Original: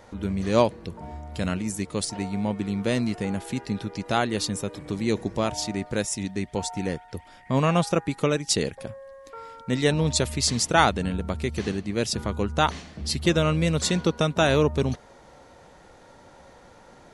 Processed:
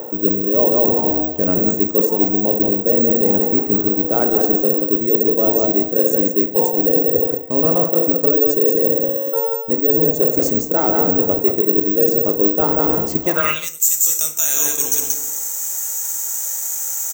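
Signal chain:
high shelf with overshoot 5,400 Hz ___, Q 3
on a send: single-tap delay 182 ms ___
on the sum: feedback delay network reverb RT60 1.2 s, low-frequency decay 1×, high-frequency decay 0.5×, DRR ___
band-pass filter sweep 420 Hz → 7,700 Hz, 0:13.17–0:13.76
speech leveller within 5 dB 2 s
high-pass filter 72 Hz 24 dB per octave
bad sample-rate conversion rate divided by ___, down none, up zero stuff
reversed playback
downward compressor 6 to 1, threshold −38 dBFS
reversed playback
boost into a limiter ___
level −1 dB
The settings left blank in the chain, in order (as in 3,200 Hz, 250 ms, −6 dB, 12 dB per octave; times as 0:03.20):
+8.5 dB, −8 dB, 5.5 dB, 2×, +27 dB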